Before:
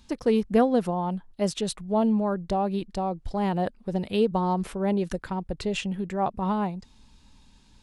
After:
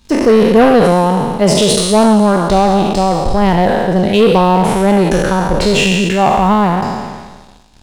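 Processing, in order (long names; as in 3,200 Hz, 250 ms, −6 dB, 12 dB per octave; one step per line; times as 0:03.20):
peak hold with a decay on every bin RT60 1.75 s
leveller curve on the samples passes 2
level +7 dB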